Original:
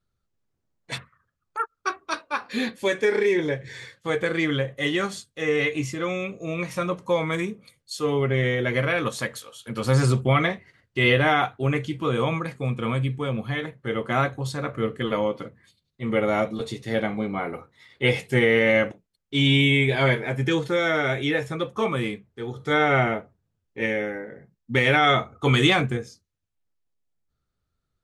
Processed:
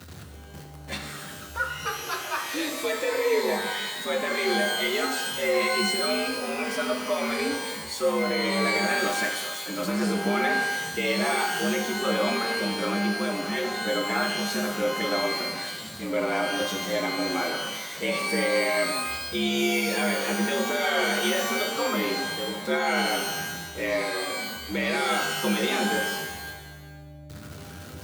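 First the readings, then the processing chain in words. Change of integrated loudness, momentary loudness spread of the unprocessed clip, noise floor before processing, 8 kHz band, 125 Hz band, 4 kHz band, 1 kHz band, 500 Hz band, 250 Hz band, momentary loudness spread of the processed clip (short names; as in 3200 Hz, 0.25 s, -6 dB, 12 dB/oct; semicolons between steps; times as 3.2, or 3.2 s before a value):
-2.0 dB, 14 LU, -79 dBFS, +9.5 dB, -13.5 dB, +2.0 dB, -0.5 dB, -2.5 dB, -2.5 dB, 11 LU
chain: zero-crossing step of -32.5 dBFS; frequency shift +72 Hz; limiter -14 dBFS, peak gain reduction 9.5 dB; flange 0.37 Hz, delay 7.3 ms, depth 8 ms, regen +69%; shimmer reverb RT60 1.1 s, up +12 st, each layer -2 dB, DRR 4.5 dB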